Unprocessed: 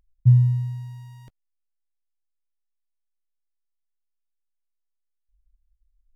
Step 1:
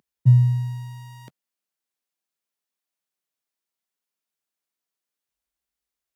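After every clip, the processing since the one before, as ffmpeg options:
-af "highpass=f=150:w=0.5412,highpass=f=150:w=1.3066,volume=8dB"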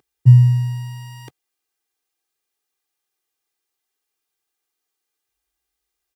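-af "aecho=1:1:2.5:0.97,volume=4.5dB"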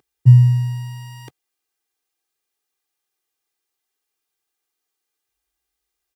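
-af anull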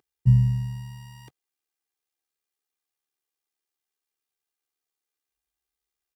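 -af "tremolo=f=73:d=0.519,volume=-6dB"

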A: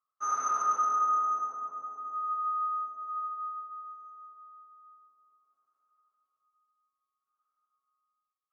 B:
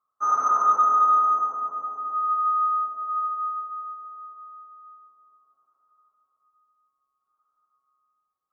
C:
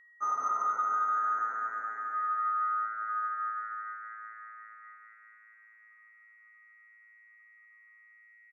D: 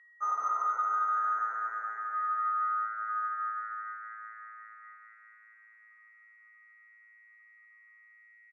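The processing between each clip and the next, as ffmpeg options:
-af "highshelf=f=1.6k:t=q:w=1.5:g=-11,acontrast=47,bandreject=f=60:t=h:w=6,bandreject=f=120:t=h:w=6,volume=2dB"
-filter_complex "[0:a]acompressor=threshold=-21dB:ratio=6,aeval=exprs='val(0)+0.00316*sin(2*PI*1900*n/s)':c=same,asplit=2[a][b];[b]asplit=7[c][d][e][f][g][h][i];[c]adelay=235,afreqshift=110,volume=-11.5dB[j];[d]adelay=470,afreqshift=220,volume=-15.7dB[k];[e]adelay=705,afreqshift=330,volume=-19.8dB[l];[f]adelay=940,afreqshift=440,volume=-24dB[m];[g]adelay=1175,afreqshift=550,volume=-28.1dB[n];[h]adelay=1410,afreqshift=660,volume=-32.3dB[o];[i]adelay=1645,afreqshift=770,volume=-36.4dB[p];[j][k][l][m][n][o][p]amix=inputs=7:normalize=0[q];[a][q]amix=inputs=2:normalize=0,volume=-6.5dB"
-af "highpass=490,lowpass=5.7k"

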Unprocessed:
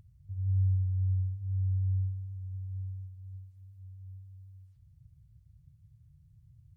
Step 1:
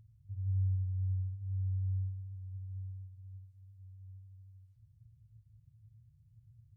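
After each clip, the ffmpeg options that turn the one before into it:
-af "equalizer=f=110:w=6.1:g=12.5,volume=-8dB"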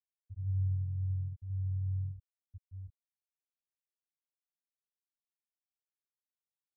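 -filter_complex "[0:a]asplit=4[a][b][c][d];[b]adelay=119,afreqshift=41,volume=-18dB[e];[c]adelay=238,afreqshift=82,volume=-27.4dB[f];[d]adelay=357,afreqshift=123,volume=-36.7dB[g];[a][e][f][g]amix=inputs=4:normalize=0,afftfilt=real='re*gte(hypot(re,im),0.112)':imag='im*gte(hypot(re,im),0.112)':win_size=1024:overlap=0.75"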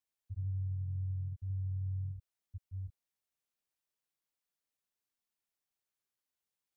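-af "acompressor=threshold=-39dB:ratio=6,volume=4dB"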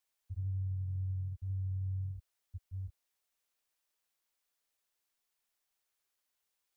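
-af "equalizer=f=160:t=o:w=1.8:g=-10.5,volume=6.5dB"

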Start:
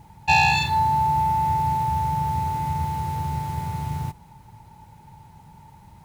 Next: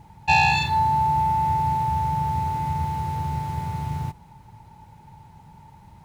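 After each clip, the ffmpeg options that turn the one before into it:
-af "highshelf=f=7.1k:g=-6.5"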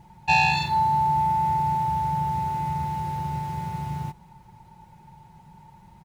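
-af "aecho=1:1:5.5:0.48,volume=-3dB"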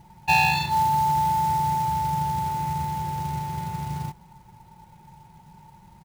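-af "acrusher=bits=4:mode=log:mix=0:aa=0.000001"

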